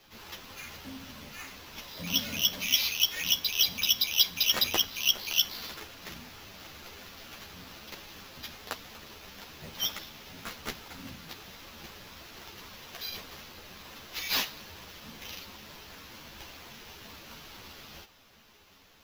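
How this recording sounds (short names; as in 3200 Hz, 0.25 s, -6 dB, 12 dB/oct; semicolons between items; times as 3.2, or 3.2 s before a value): aliases and images of a low sample rate 8800 Hz, jitter 0%; a shimmering, thickened sound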